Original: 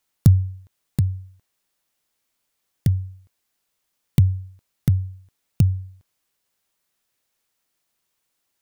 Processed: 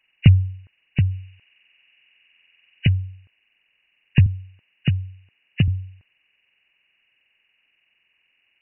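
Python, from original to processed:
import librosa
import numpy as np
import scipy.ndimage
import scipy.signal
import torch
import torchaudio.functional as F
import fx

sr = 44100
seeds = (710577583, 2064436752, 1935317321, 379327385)

y = fx.freq_compress(x, sr, knee_hz=1500.0, ratio=4.0)
y = fx.high_shelf(y, sr, hz=2100.0, db=12.0, at=(1.11, 2.87))
y = fx.highpass(y, sr, hz=110.0, slope=12, at=(4.26, 5.68))
y = y * librosa.db_to_amplitude(1.5)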